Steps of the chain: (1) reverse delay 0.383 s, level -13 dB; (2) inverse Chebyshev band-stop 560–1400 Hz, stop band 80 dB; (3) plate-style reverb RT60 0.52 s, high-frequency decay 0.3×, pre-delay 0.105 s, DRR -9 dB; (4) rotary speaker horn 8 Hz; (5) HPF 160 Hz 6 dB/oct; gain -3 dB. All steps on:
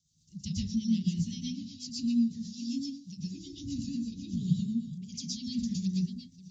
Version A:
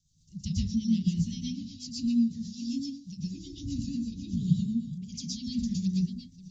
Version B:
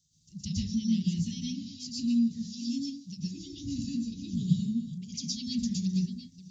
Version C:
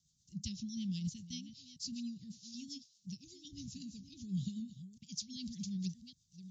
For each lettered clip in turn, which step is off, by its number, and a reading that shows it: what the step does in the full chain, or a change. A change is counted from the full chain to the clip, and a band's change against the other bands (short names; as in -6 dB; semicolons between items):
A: 5, loudness change +2.0 LU; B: 4, momentary loudness spread change -1 LU; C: 3, loudness change -10.0 LU